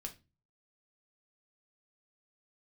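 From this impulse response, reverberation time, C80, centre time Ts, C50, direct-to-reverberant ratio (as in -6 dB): 0.25 s, 22.0 dB, 8 ms, 15.0 dB, 2.5 dB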